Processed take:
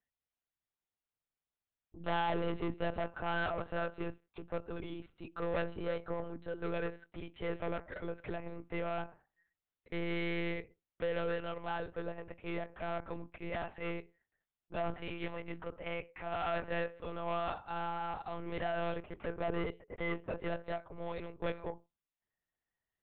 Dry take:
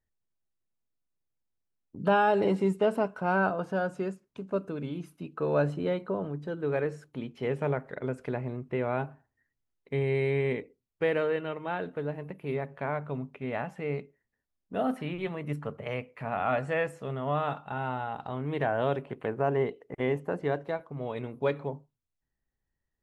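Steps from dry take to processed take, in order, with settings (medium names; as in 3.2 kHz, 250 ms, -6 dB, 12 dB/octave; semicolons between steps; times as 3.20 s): high-pass 130 Hz 6 dB/octave; bass shelf 260 Hz -12 dB; saturation -30 dBFS, distortion -9 dB; monotone LPC vocoder at 8 kHz 170 Hz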